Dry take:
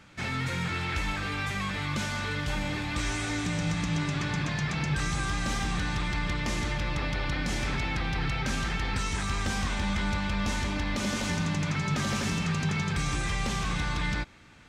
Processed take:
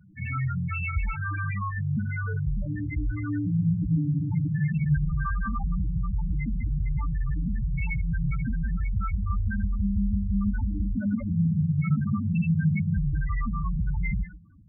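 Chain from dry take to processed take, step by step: band noise 260–2300 Hz -65 dBFS; Schroeder reverb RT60 0.47 s, combs from 32 ms, DRR 9 dB; loudest bins only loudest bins 4; gain +6.5 dB

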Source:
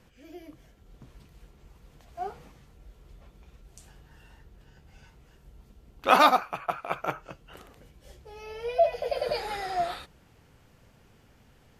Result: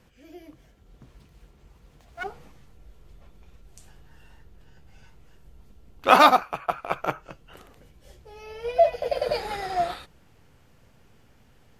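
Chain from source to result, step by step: 0.48–2.24 self-modulated delay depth 0.5 ms; in parallel at -4.5 dB: backlash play -26.5 dBFS

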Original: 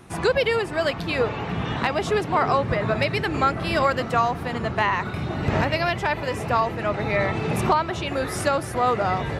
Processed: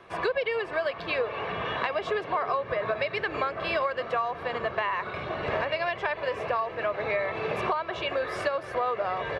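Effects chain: three-band isolator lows -16 dB, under 330 Hz, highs -23 dB, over 4100 Hz; comb 1.8 ms, depth 46%; compressor 5:1, threshold -25 dBFS, peak gain reduction 11 dB

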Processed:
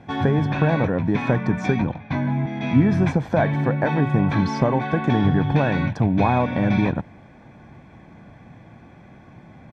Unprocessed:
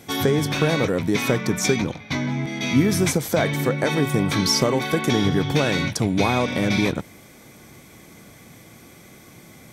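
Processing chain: LPF 1600 Hz 12 dB/oct; comb 1.2 ms, depth 46%; gain +1.5 dB

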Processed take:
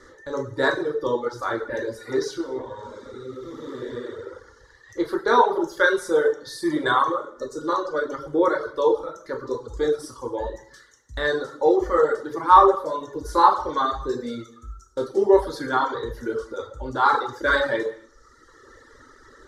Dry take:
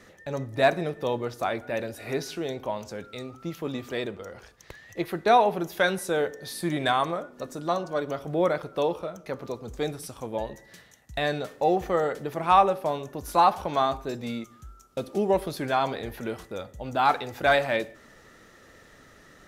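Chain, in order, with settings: 2.41–4.84 time blur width 0.435 s; LPF 6100 Hz 12 dB/oct; fixed phaser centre 690 Hz, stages 6; non-linear reverb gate 0.3 s falling, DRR -1.5 dB; reverb removal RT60 1.2 s; gain +5.5 dB

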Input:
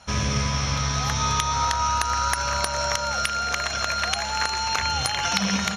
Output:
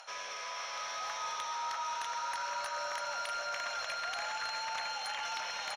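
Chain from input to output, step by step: echo 0.645 s -4.5 dB; on a send at -6.5 dB: reverb RT60 3.3 s, pre-delay 39 ms; on the sum: soft clip -13 dBFS, distortion -22 dB; reverse; compressor 6:1, threshold -32 dBFS, peak gain reduction 12 dB; reverse; Chebyshev high-pass 540 Hz, order 3; upward compressor, threshold -46 dBFS; overdrive pedal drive 9 dB, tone 2900 Hz, clips at -23 dBFS; gain -3.5 dB

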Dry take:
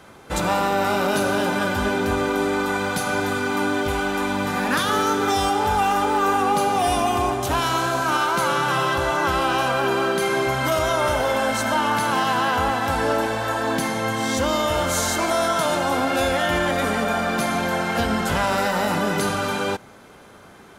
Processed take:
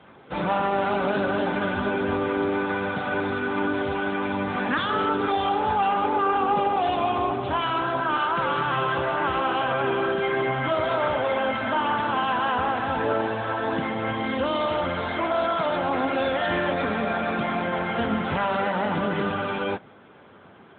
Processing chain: 5.79–7.25 upward compressor, threshold -27 dBFS; gain -2 dB; AMR-NB 10.2 kbps 8000 Hz

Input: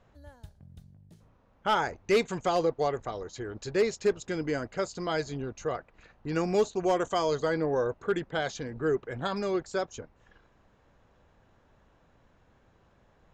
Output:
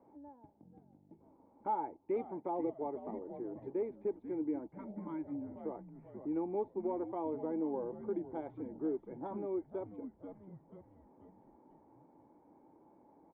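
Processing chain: Wiener smoothing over 9 samples; vocal tract filter u; low shelf 190 Hz -8.5 dB; on a send: frequency-shifting echo 0.488 s, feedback 47%, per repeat -100 Hz, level -11 dB; on the sum: spectral repair 4.78–5.51, 340–840 Hz after; tilt +4.5 dB/oct; notch 740 Hz, Q 13; three-band squash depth 40%; gain +9.5 dB

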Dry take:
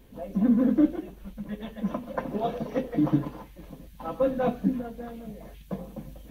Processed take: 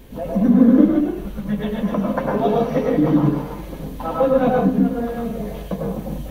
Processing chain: in parallel at +1.5 dB: compressor, threshold -36 dBFS, peak gain reduction 18.5 dB; on the sum: reverb, pre-delay 93 ms, DRR -1 dB; gain +4 dB

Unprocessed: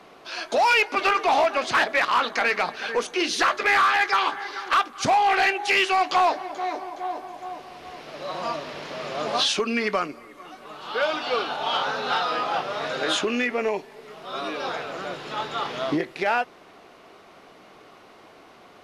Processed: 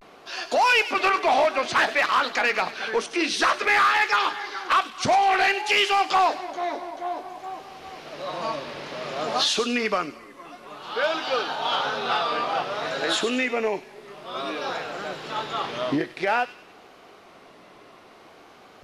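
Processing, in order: vibrato 0.55 Hz 86 cents; thin delay 99 ms, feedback 41%, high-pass 2900 Hz, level -9 dB

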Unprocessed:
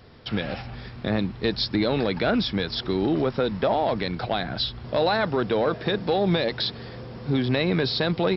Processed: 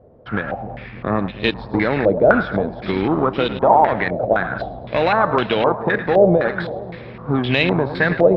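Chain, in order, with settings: split-band echo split 630 Hz, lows 0.298 s, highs 0.107 s, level -9.5 dB; in parallel at -4 dB: overloaded stage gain 29 dB; on the sum: added harmonics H 7 -21 dB, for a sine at -9 dBFS; stepped low-pass 3.9 Hz 590–2900 Hz; gain +2.5 dB

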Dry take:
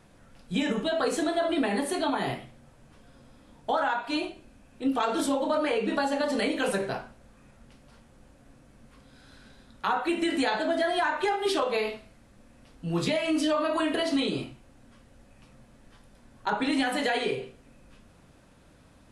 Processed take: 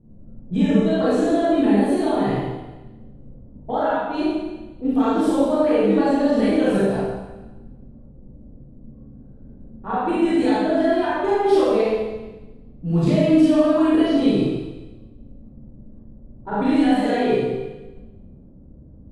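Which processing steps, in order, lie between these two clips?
tilt shelf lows +9 dB, about 660 Hz; low-pass opened by the level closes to 350 Hz, open at -20 dBFS; Schroeder reverb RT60 1.1 s, combs from 28 ms, DRR -8 dB; gain -2 dB

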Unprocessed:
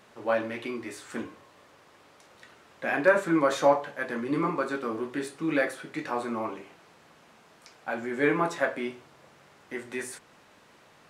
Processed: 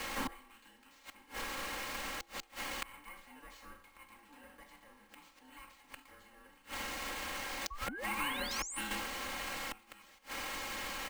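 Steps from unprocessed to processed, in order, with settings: per-bin compression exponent 0.6; 6.61–8.91 compressor 16:1, threshold -32 dBFS, peak gain reduction 16 dB; passive tone stack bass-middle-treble 5-5-5; careless resampling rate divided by 4×, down none, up hold; flipped gate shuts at -37 dBFS, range -30 dB; notch 880 Hz, Q 12; 7.7–8.81 painted sound rise 510–10000 Hz -57 dBFS; notches 60/120/180/240 Hz; ring modulator 610 Hz; frequency shift -29 Hz; comb 3.7 ms, depth 81%; gain +14 dB

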